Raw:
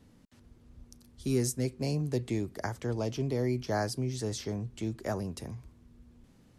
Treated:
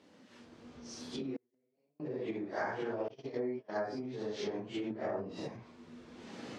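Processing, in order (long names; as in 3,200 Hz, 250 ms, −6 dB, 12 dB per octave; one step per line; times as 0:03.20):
random phases in long frames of 200 ms
camcorder AGC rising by 14 dB per second
0:03.08–0:03.85: noise gate −29 dBFS, range −31 dB
treble cut that deepens with the level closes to 1,600 Hz, closed at −27 dBFS
0:04.90–0:05.48: low-shelf EQ 450 Hz +8.5 dB
downward compressor 6 to 1, threshold −34 dBFS, peak gain reduction 12 dB
0:01.36–0:02.00: gate with flip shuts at −34 dBFS, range −41 dB
band-pass filter 320–5,300 Hz
level +4 dB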